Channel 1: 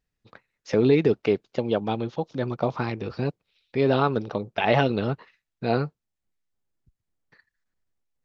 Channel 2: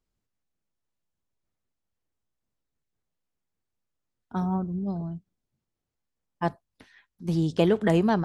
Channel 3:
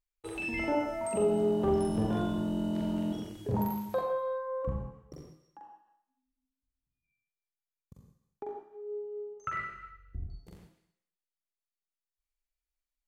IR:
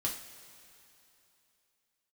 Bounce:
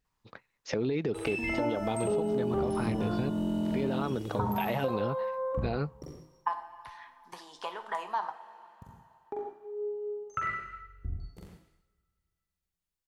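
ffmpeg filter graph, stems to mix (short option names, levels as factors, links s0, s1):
-filter_complex "[0:a]alimiter=limit=0.119:level=0:latency=1:release=92,volume=1[s0];[1:a]acompressor=threshold=0.0282:ratio=6,highpass=f=970:t=q:w=6.3,adelay=50,volume=0.668,asplit=2[s1][s2];[s2]volume=0.708[s3];[2:a]adelay=900,volume=1.26,asplit=2[s4][s5];[s5]volume=0.1[s6];[3:a]atrim=start_sample=2205[s7];[s3][s6]amix=inputs=2:normalize=0[s8];[s8][s7]afir=irnorm=-1:irlink=0[s9];[s0][s1][s4][s9]amix=inputs=4:normalize=0,acompressor=threshold=0.0501:ratio=6"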